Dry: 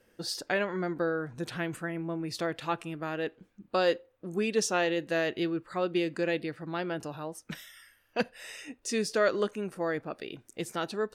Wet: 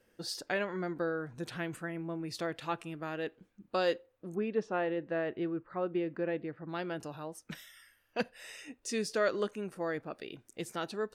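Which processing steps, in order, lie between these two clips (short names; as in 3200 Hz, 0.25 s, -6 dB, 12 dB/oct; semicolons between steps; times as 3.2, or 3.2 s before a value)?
4.35–6.69 LPF 1600 Hz 12 dB/oct; gain -4 dB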